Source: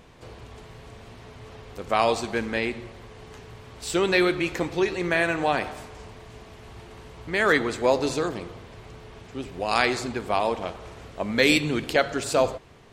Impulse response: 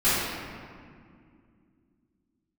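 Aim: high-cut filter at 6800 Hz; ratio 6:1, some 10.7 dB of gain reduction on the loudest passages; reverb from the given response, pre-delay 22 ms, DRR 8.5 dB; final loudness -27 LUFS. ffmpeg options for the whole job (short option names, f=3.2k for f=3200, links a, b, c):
-filter_complex "[0:a]lowpass=6.8k,acompressor=threshold=-27dB:ratio=6,asplit=2[a][b];[1:a]atrim=start_sample=2205,adelay=22[c];[b][c]afir=irnorm=-1:irlink=0,volume=-25.5dB[d];[a][d]amix=inputs=2:normalize=0,volume=5dB"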